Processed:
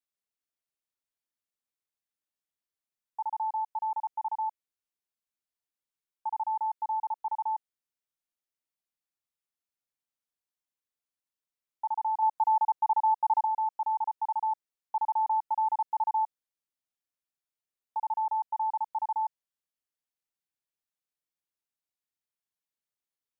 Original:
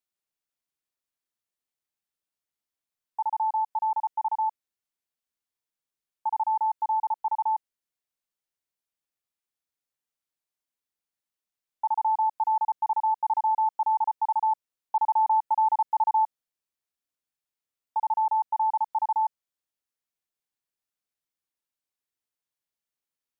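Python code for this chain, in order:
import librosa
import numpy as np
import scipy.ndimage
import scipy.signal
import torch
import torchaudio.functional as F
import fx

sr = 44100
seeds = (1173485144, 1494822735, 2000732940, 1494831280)

y = fx.dynamic_eq(x, sr, hz=860.0, q=1.2, threshold_db=-35.0, ratio=4.0, max_db=5, at=(12.22, 13.45))
y = y * librosa.db_to_amplitude(-5.0)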